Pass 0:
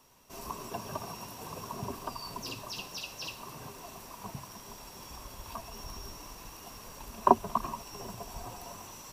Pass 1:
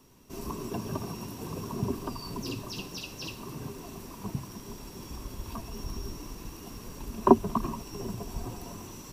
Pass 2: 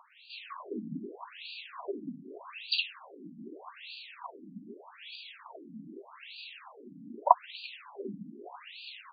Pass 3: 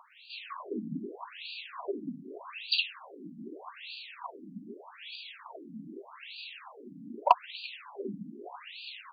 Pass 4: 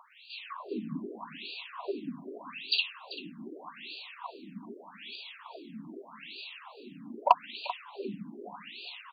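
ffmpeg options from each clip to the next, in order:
-af "lowshelf=f=470:t=q:w=1.5:g=8.5"
-af "crystalizer=i=9.5:c=0,acompressor=mode=upward:threshold=0.0178:ratio=2.5,afftfilt=real='re*between(b*sr/1024,210*pow(3400/210,0.5+0.5*sin(2*PI*0.82*pts/sr))/1.41,210*pow(3400/210,0.5+0.5*sin(2*PI*0.82*pts/sr))*1.41)':imag='im*between(b*sr/1024,210*pow(3400/210,0.5+0.5*sin(2*PI*0.82*pts/sr))/1.41,210*pow(3400/210,0.5+0.5*sin(2*PI*0.82*pts/sr))*1.41)':win_size=1024:overlap=0.75"
-af "acontrast=78,volume=0.562"
-af "aecho=1:1:389:0.178"

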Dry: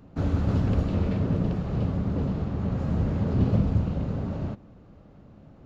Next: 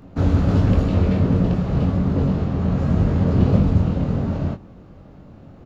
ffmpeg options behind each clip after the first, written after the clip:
-filter_complex "[0:a]asplit=2[s0][s1];[s1]adelay=22,volume=0.501[s2];[s0][s2]amix=inputs=2:normalize=0,volume=2.11"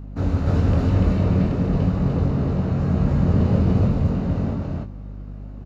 -filter_complex "[0:a]bandreject=f=3300:w=11,asplit=2[s0][s1];[s1]aecho=0:1:142.9|291.5:0.355|1[s2];[s0][s2]amix=inputs=2:normalize=0,aeval=exprs='val(0)+0.0355*(sin(2*PI*50*n/s)+sin(2*PI*2*50*n/s)/2+sin(2*PI*3*50*n/s)/3+sin(2*PI*4*50*n/s)/4+sin(2*PI*5*50*n/s)/5)':c=same,volume=0.596"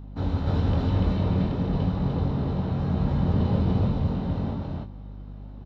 -af "superequalizer=9b=1.78:13b=2.51:15b=0.398:16b=0.282,volume=0.562"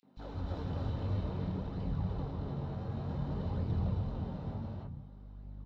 -filter_complex "[0:a]flanger=delay=0.4:depth=8.9:regen=52:speed=0.55:shape=sinusoidal,asplit=2[s0][s1];[s1]volume=44.7,asoftclip=hard,volume=0.0224,volume=0.355[s2];[s0][s2]amix=inputs=2:normalize=0,acrossover=split=240|2600[s3][s4][s5];[s4]adelay=30[s6];[s3]adelay=170[s7];[s7][s6][s5]amix=inputs=3:normalize=0,volume=0.398"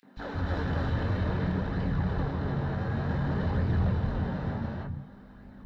-filter_complex "[0:a]asplit=2[s0][s1];[s1]asoftclip=type=hard:threshold=0.0237,volume=0.668[s2];[s0][s2]amix=inputs=2:normalize=0,equalizer=f=1700:w=2.7:g=14,bandreject=f=50:t=h:w=6,bandreject=f=100:t=h:w=6,bandreject=f=150:t=h:w=6,volume=1.58"

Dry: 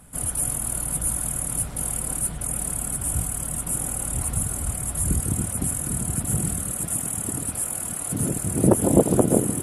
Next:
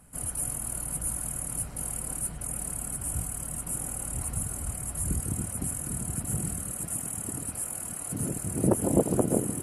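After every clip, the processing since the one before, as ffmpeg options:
-af "bandreject=f=3500:w=6.5,volume=0.473"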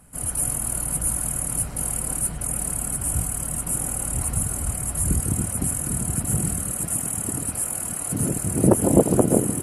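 -af "dynaudnorm=f=160:g=3:m=1.58,volume=1.5"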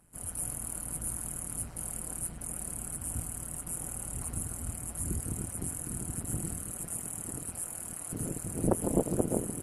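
-af "tremolo=f=170:d=0.75,volume=0.376"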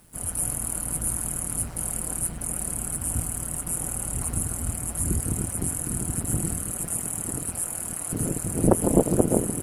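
-af "acrusher=bits=10:mix=0:aa=0.000001,volume=2.66"

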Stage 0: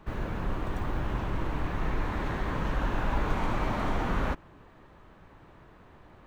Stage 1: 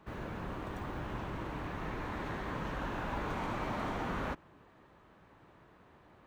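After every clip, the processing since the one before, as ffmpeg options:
-af "highpass=f=110:p=1,volume=0.562"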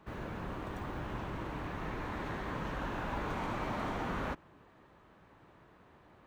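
-af anull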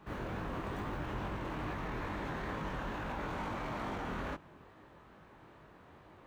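-af "alimiter=level_in=3.35:limit=0.0631:level=0:latency=1:release=10,volume=0.299,flanger=delay=19:depth=5.9:speed=2.3,volume=2"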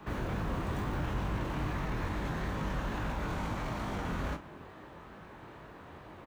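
-filter_complex "[0:a]acrossover=split=190|4500[s0][s1][s2];[s1]alimiter=level_in=5.96:limit=0.0631:level=0:latency=1,volume=0.168[s3];[s0][s3][s2]amix=inputs=3:normalize=0,asplit=2[s4][s5];[s5]adelay=36,volume=0.282[s6];[s4][s6]amix=inputs=2:normalize=0,volume=2.37"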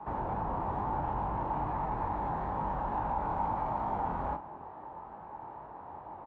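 -af "crystalizer=i=6.5:c=0,lowpass=f=860:t=q:w=6.5,volume=0.596"

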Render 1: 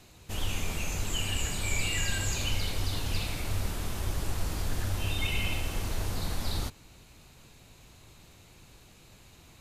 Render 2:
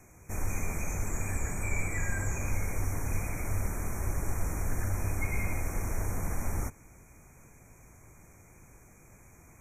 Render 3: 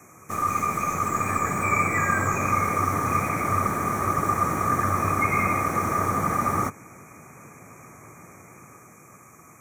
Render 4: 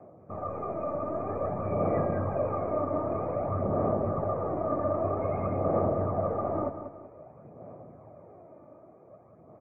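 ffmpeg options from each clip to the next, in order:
-filter_complex "[0:a]afftfilt=real='re*(1-between(b*sr/4096,2500,5500))':imag='im*(1-between(b*sr/4096,2500,5500))':win_size=4096:overlap=0.75,acrossover=split=760|2400[s0][s1][s2];[s2]alimiter=level_in=3.16:limit=0.0631:level=0:latency=1:release=181,volume=0.316[s3];[s0][s1][s3]amix=inputs=3:normalize=0"
-filter_complex "[0:a]acrossover=split=110|4200[s0][s1][s2];[s0]aeval=exprs='val(0)*sin(2*PI*1200*n/s)':c=same[s3];[s1]dynaudnorm=f=180:g=13:m=1.78[s4];[s2]aeval=exprs='clip(val(0),-1,0.00158)':c=same[s5];[s3][s4][s5]amix=inputs=3:normalize=0,volume=2.24"
-af "aphaser=in_gain=1:out_gain=1:delay=3.4:decay=0.47:speed=0.52:type=sinusoidal,lowpass=f=620:t=q:w=5,aecho=1:1:191|382|573|764:0.335|0.117|0.041|0.0144,volume=0.422"

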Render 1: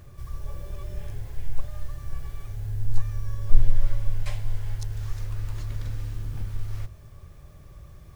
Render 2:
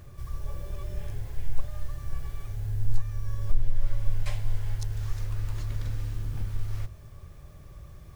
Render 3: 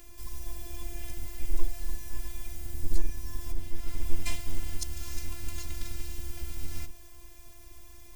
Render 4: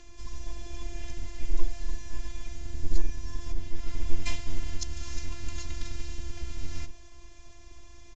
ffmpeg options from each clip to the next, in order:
-af "alimiter=limit=0.282:level=0:latency=1:release=450"
-af "afreqshift=-13,afftfilt=real='hypot(re,im)*cos(PI*b)':imag='0':win_size=512:overlap=0.75,aexciter=amount=1.7:drive=7.8:freq=2100,volume=1.19"
-af "aresample=16000,aresample=44100,volume=1.19"

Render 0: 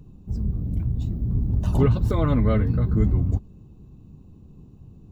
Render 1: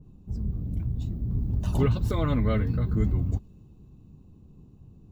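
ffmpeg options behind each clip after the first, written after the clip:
-af "adynamicequalizer=threshold=0.00631:dfrequency=1700:dqfactor=0.7:tfrequency=1700:tqfactor=0.7:attack=5:release=100:ratio=0.375:range=3:mode=boostabove:tftype=highshelf,volume=0.596"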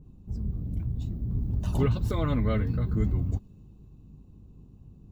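-af "aeval=exprs='val(0)+0.00251*(sin(2*PI*50*n/s)+sin(2*PI*2*50*n/s)/2+sin(2*PI*3*50*n/s)/3+sin(2*PI*4*50*n/s)/4+sin(2*PI*5*50*n/s)/5)':c=same,volume=0.841"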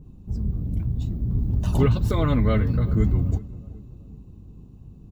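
-filter_complex "[0:a]asplit=2[s0][s1];[s1]adelay=377,lowpass=f=1100:p=1,volume=0.126,asplit=2[s2][s3];[s3]adelay=377,lowpass=f=1100:p=1,volume=0.49,asplit=2[s4][s5];[s5]adelay=377,lowpass=f=1100:p=1,volume=0.49,asplit=2[s6][s7];[s7]adelay=377,lowpass=f=1100:p=1,volume=0.49[s8];[s0][s2][s4][s6][s8]amix=inputs=5:normalize=0,volume=1.88"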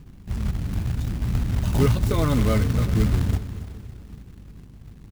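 -af "acrusher=bits=4:mode=log:mix=0:aa=0.000001,aecho=1:1:279|558|837|1116:0.188|0.081|0.0348|0.015"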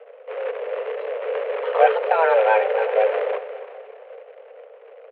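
-af "highpass=f=160:t=q:w=0.5412,highpass=f=160:t=q:w=1.307,lowpass=f=2500:t=q:w=0.5176,lowpass=f=2500:t=q:w=0.7071,lowpass=f=2500:t=q:w=1.932,afreqshift=320,volume=2.24"

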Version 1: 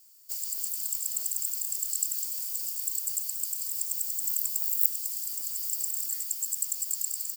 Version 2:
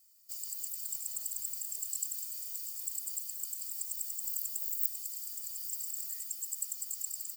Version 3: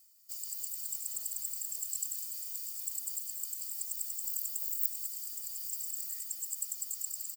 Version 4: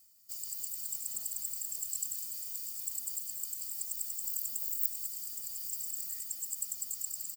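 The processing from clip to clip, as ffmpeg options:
-af "afftfilt=real='re*eq(mod(floor(b*sr/1024/290),2),0)':imag='im*eq(mod(floor(b*sr/1024/290),2),0)':win_size=1024:overlap=0.75,volume=0.631"
-filter_complex "[0:a]areverse,acompressor=mode=upward:threshold=0.00316:ratio=2.5,areverse,asplit=2[s0][s1];[s1]adelay=198.3,volume=0.447,highshelf=f=4000:g=-4.46[s2];[s0][s2]amix=inputs=2:normalize=0"
-af "lowshelf=f=370:g=8.5"

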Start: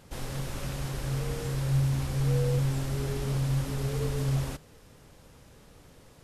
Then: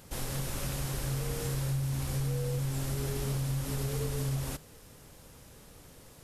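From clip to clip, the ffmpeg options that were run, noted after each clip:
-af "acompressor=threshold=0.0355:ratio=6,highshelf=f=7600:g=11"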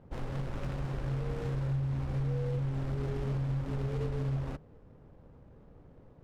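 -af "adynamicsmooth=sensitivity=8:basefreq=740"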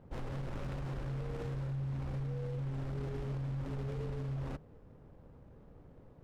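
-af "alimiter=level_in=2.37:limit=0.0631:level=0:latency=1:release=11,volume=0.422,volume=0.891"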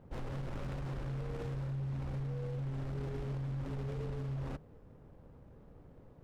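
-af "asoftclip=type=hard:threshold=0.02"

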